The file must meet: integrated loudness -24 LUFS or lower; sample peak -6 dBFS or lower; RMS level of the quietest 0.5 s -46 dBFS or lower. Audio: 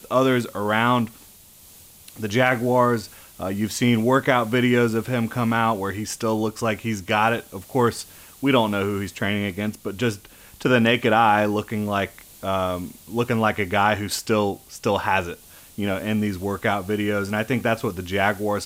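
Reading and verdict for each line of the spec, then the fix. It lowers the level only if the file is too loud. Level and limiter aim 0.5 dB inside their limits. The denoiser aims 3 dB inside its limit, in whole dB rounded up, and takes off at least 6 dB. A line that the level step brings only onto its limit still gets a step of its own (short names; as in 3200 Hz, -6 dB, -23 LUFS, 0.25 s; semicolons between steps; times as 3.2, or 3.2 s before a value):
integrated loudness -22.5 LUFS: fail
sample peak -5.5 dBFS: fail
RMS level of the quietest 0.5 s -48 dBFS: OK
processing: gain -2 dB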